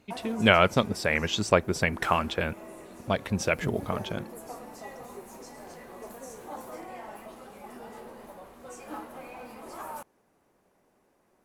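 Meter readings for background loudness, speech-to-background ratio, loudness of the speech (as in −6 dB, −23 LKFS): −43.5 LKFS, 17.0 dB, −26.5 LKFS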